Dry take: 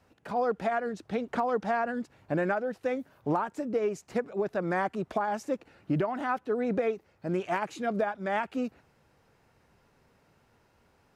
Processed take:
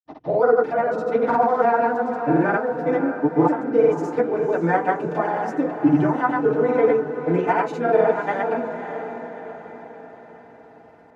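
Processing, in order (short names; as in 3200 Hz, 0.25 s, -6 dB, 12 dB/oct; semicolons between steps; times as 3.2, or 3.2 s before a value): tape start at the beginning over 0.44 s; HPF 92 Hz; high shelf 5200 Hz -11 dB; notches 50/100/150/200/250/300 Hz; FDN reverb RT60 0.31 s, low-frequency decay 1×, high-frequency decay 0.45×, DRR -8.5 dB; grains, pitch spread up and down by 0 st; on a send: diffused feedback echo 0.559 s, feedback 51%, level -8.5 dB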